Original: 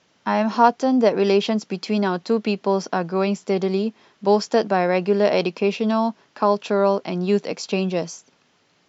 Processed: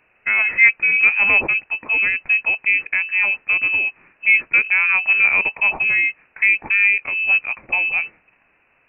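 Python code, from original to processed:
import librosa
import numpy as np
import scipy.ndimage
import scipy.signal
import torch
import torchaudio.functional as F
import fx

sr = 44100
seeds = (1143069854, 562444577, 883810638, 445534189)

y = fx.formant_shift(x, sr, semitones=-5)
y = fx.freq_invert(y, sr, carrier_hz=2800)
y = y * 10.0 ** (2.5 / 20.0)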